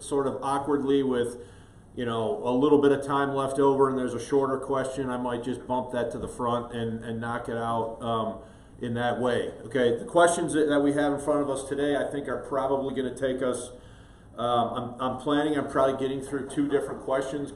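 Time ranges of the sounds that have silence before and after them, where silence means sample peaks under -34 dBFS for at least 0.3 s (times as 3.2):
1.97–8.39
8.82–13.68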